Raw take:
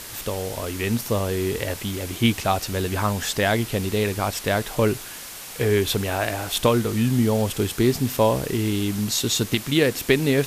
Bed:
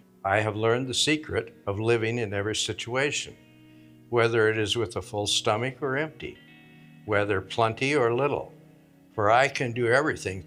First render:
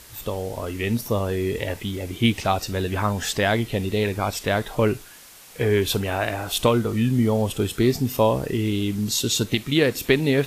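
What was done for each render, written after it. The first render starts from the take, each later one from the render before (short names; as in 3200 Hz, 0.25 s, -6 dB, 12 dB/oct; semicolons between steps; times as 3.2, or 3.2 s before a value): noise print and reduce 9 dB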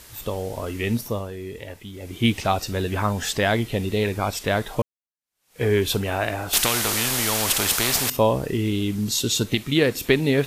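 0.95–2.29 dip -9.5 dB, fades 0.36 s linear; 4.82–5.63 fade in exponential; 6.53–8.1 spectral compressor 4:1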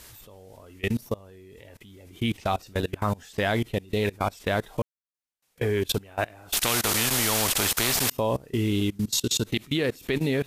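level quantiser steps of 24 dB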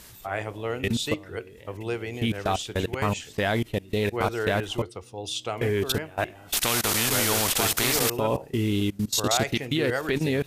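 add bed -7 dB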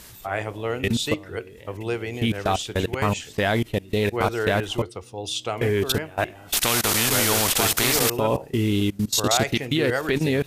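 gain +3 dB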